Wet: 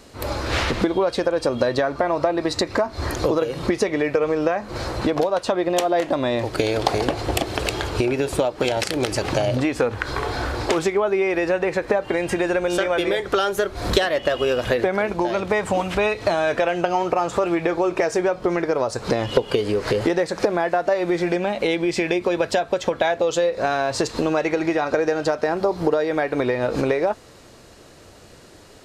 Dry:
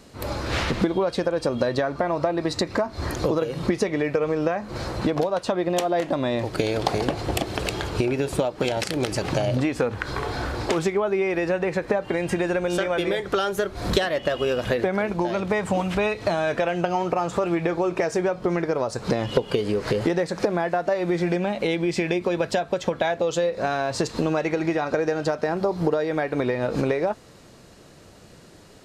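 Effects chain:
parametric band 170 Hz −7 dB 0.86 octaves
level +3.5 dB

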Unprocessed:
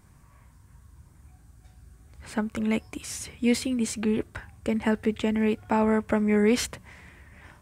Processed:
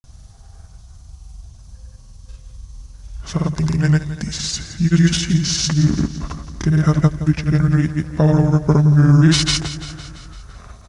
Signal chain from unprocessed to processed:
bass and treble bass +10 dB, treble +9 dB
speed change −30%
granular cloud, pitch spread up and down by 0 semitones
on a send: repeating echo 169 ms, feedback 60%, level −13.5 dB
on the sum: level +6 dB

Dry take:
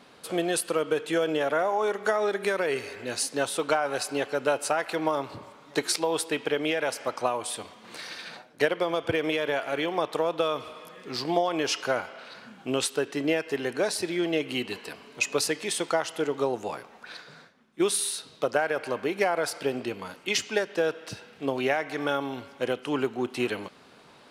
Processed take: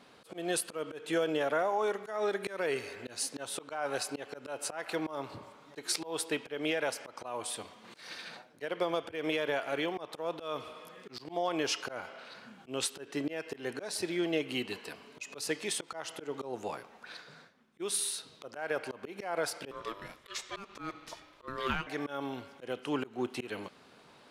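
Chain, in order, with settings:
volume swells 174 ms
0:19.71–0:21.87: ring modulation 790 Hz
level −4.5 dB

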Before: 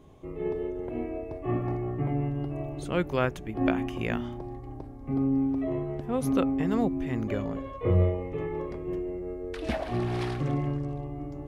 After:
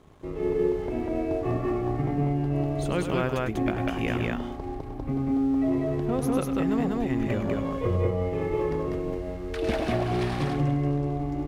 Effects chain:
downward compressor 3 to 1, threshold −30 dBFS, peak gain reduction 9 dB
dead-zone distortion −56.5 dBFS
on a send: loudspeakers that aren't time-aligned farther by 35 metres −9 dB, 67 metres −1 dB
on the sum: level +5 dB

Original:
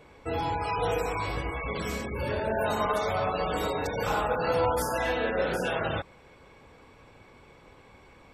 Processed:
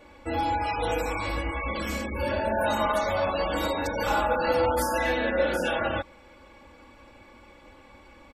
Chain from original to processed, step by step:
comb filter 3.5 ms, depth 86%

